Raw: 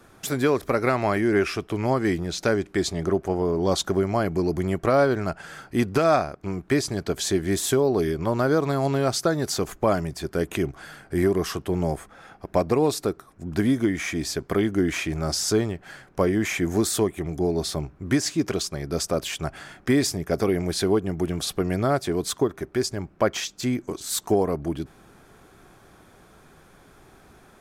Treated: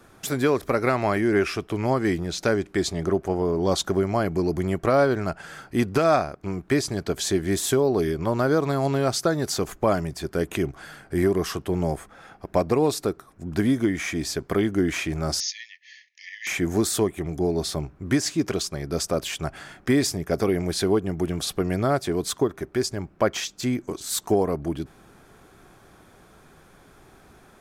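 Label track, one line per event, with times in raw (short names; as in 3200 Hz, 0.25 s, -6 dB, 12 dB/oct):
15.400000	16.470000	brick-wall FIR band-pass 1700–6800 Hz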